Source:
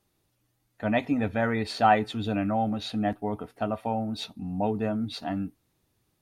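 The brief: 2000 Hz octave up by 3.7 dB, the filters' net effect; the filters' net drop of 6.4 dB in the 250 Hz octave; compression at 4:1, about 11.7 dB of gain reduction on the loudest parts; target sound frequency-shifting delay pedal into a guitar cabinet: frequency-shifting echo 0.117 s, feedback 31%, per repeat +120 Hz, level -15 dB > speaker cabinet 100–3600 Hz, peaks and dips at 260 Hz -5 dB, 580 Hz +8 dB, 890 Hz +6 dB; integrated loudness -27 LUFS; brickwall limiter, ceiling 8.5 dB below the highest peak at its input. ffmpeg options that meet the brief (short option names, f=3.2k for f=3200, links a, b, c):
-filter_complex "[0:a]equalizer=f=250:t=o:g=-5.5,equalizer=f=2k:t=o:g=4.5,acompressor=threshold=-29dB:ratio=4,alimiter=level_in=2dB:limit=-24dB:level=0:latency=1,volume=-2dB,asplit=4[a][b][c][d];[b]adelay=117,afreqshift=120,volume=-15dB[e];[c]adelay=234,afreqshift=240,volume=-25.2dB[f];[d]adelay=351,afreqshift=360,volume=-35.3dB[g];[a][e][f][g]amix=inputs=4:normalize=0,highpass=100,equalizer=f=260:t=q:w=4:g=-5,equalizer=f=580:t=q:w=4:g=8,equalizer=f=890:t=q:w=4:g=6,lowpass=f=3.6k:w=0.5412,lowpass=f=3.6k:w=1.3066,volume=7.5dB"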